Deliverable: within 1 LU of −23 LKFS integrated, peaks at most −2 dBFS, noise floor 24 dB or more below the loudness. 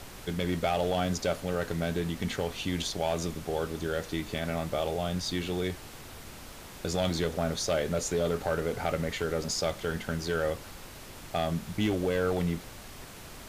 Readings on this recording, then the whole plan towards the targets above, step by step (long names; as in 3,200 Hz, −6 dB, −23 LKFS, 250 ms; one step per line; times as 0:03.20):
share of clipped samples 0.5%; peaks flattened at −20.0 dBFS; background noise floor −46 dBFS; target noise floor −55 dBFS; integrated loudness −31.0 LKFS; sample peak −20.0 dBFS; target loudness −23.0 LKFS
→ clipped peaks rebuilt −20 dBFS
noise reduction from a noise print 9 dB
level +8 dB